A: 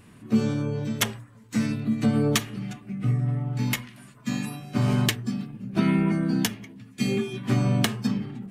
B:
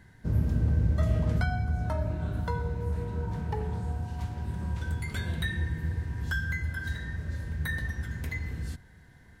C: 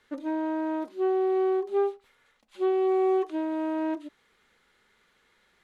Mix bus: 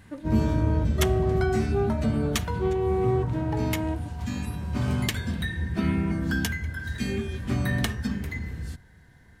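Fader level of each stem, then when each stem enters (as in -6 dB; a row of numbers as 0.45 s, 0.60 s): -4.5 dB, +0.5 dB, -2.0 dB; 0.00 s, 0.00 s, 0.00 s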